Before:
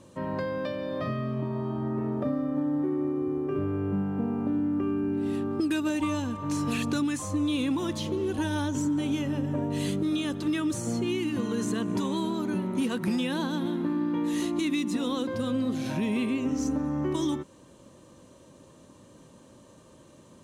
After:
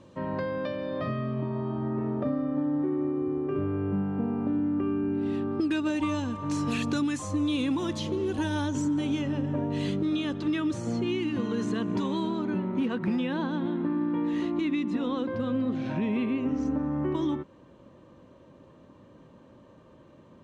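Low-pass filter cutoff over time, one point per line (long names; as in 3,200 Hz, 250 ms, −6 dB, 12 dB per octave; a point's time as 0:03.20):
0:05.55 4,300 Hz
0:06.44 7,300 Hz
0:08.91 7,300 Hz
0:09.58 4,300 Hz
0:12.23 4,300 Hz
0:12.69 2,500 Hz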